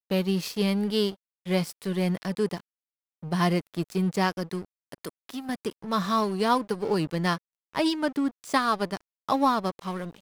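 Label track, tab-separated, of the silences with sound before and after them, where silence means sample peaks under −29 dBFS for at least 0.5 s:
2.580000	3.260000	silence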